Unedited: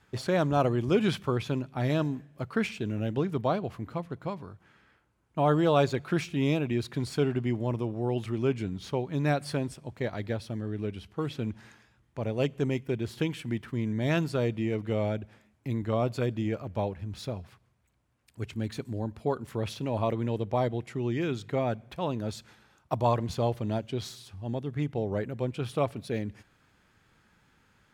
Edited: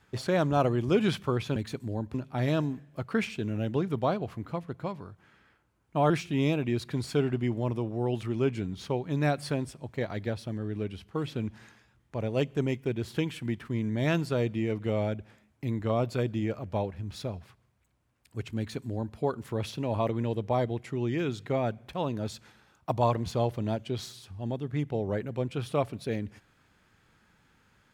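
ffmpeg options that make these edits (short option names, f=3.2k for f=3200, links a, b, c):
-filter_complex "[0:a]asplit=4[a][b][c][d];[a]atrim=end=1.562[e];[b]atrim=start=18.608:end=19.192[f];[c]atrim=start=1.558:end=5.522[g];[d]atrim=start=6.128[h];[e][f]acrossfade=d=0.004:c1=hsin:c2=hsin[i];[i][g]acrossfade=d=0.004:c1=hsin:c2=hsin[j];[j][h]acrossfade=d=0.004:c1=hsin:c2=hsin"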